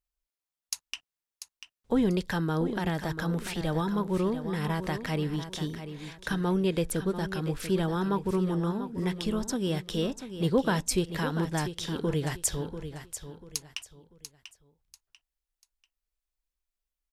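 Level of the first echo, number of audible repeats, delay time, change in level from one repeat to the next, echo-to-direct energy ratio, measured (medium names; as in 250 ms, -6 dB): -10.5 dB, 3, 691 ms, -10.5 dB, -10.0 dB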